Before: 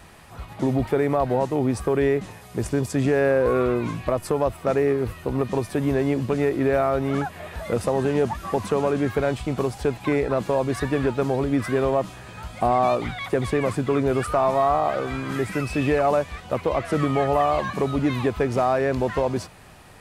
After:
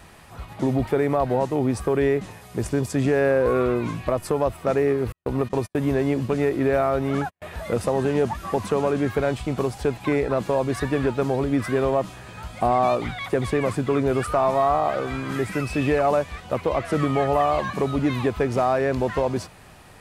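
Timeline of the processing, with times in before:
5.12–7.42 s: gate -32 dBFS, range -48 dB

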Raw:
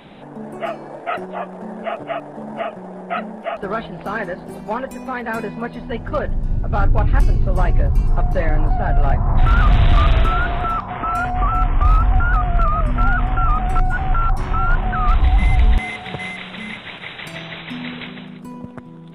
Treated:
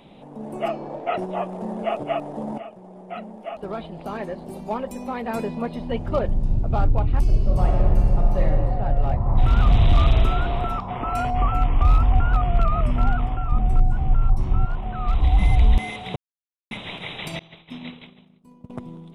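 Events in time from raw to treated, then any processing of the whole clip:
0.68–1.19 s: distance through air 98 m
2.58–6.55 s: fade in, from -13 dB
7.24–8.41 s: reverb throw, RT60 2.8 s, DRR -2 dB
11.14–12.96 s: peaking EQ 2.8 kHz +3.5 dB 1.4 oct
13.52–14.65 s: bass shelf 340 Hz +11.5 dB
16.16–16.71 s: mute
17.39–18.70 s: expander -22 dBFS
whole clip: peaking EQ 1.6 kHz -12 dB 0.66 oct; level rider gain up to 7.5 dB; trim -6 dB

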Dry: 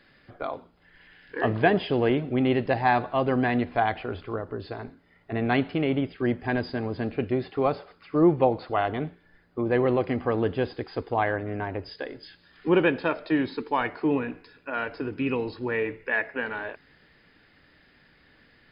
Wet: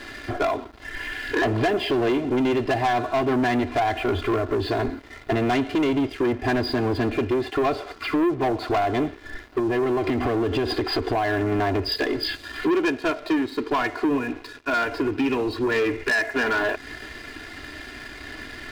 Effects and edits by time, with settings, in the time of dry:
9.59–11.52 s: compression, threshold -31 dBFS
12.72–15.76 s: upward expansion, over -32 dBFS
whole clip: comb 2.9 ms, depth 100%; compression 4:1, threshold -36 dBFS; waveshaping leveller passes 3; trim +7 dB

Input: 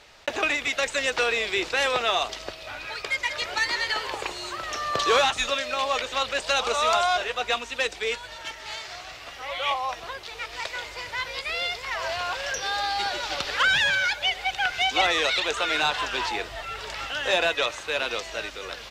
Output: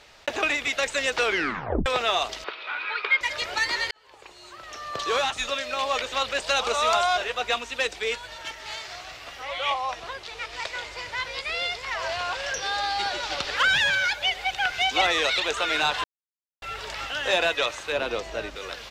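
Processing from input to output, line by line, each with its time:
1.24 s: tape stop 0.62 s
2.44–3.21 s: cabinet simulation 400–3800 Hz, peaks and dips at 420 Hz +6 dB, 640 Hz -9 dB, 1 kHz +7 dB, 1.4 kHz +9 dB, 2.3 kHz +7 dB, 3.6 kHz +4 dB
3.91–6.00 s: fade in
9.43–13.57 s: low-pass 10 kHz
16.04–16.62 s: mute
17.92–18.56 s: tilt shelf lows +6 dB, about 1.1 kHz

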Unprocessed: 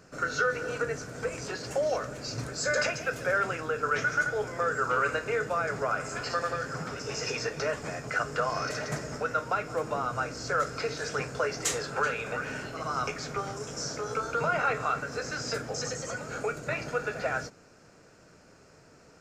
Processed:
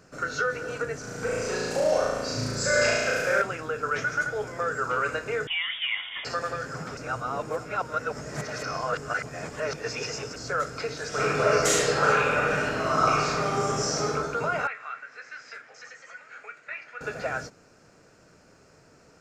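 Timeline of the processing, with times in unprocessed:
1.00–3.42 s: flutter echo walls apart 6.1 m, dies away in 1.5 s
5.47–6.25 s: frequency inversion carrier 3.5 kHz
6.97–10.36 s: reverse
11.08–14.06 s: reverb throw, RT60 1.8 s, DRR -8 dB
14.67–17.01 s: band-pass filter 2 kHz, Q 2.4

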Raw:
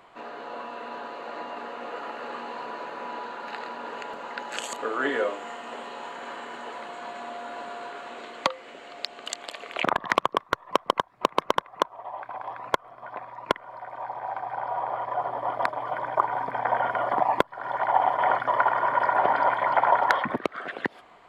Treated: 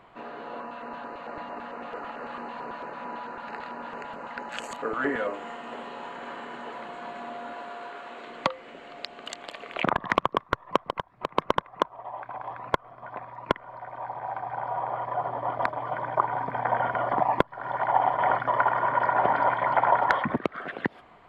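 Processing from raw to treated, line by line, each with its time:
0.60–5.34 s: LFO notch square 4.5 Hz 390–3400 Hz
7.53–8.27 s: bass shelf 220 Hz -11 dB
10.89–11.30 s: compression 2:1, threshold -28 dBFS
whole clip: tone controls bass +8 dB, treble -8 dB; trim -1 dB

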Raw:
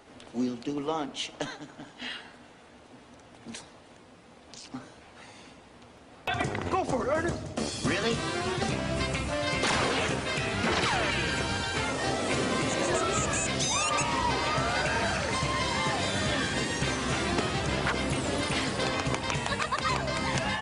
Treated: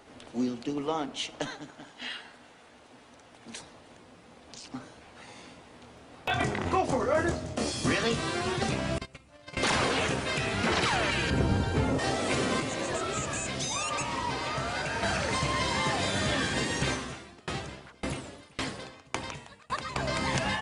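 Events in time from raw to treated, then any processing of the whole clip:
1.70–3.56 s: bass shelf 400 Hz -6 dB
5.25–8.04 s: doubling 24 ms -5 dB
8.98–9.57 s: gate -27 dBFS, range -26 dB
11.30–11.99 s: tilt shelf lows +9 dB, about 790 Hz
12.60–15.03 s: flange 1.7 Hz, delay 6.2 ms, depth 4.1 ms, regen -74%
16.92–19.96 s: sawtooth tremolo in dB decaying 1.8 Hz, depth 31 dB

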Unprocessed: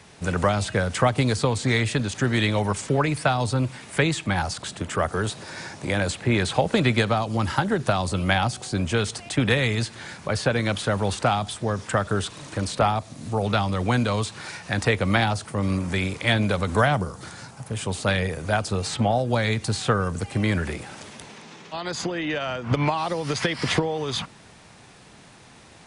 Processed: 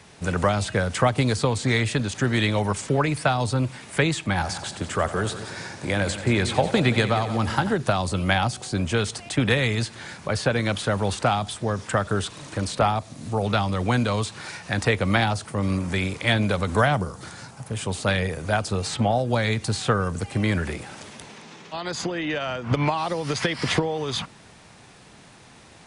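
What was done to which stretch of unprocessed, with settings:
4.31–7.73 s: multi-head delay 89 ms, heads first and second, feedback 46%, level -14.5 dB

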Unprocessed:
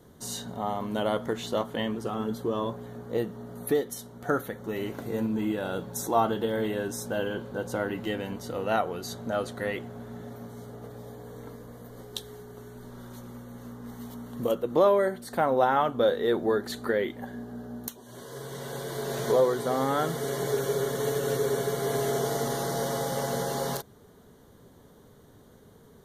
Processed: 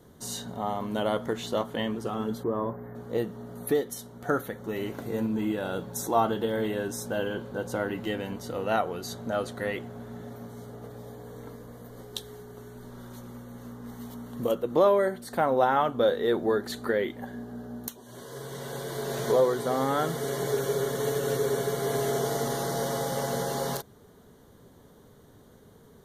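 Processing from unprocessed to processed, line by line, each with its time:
2.43–2.96 s: time-frequency box 2.2–12 kHz -20 dB

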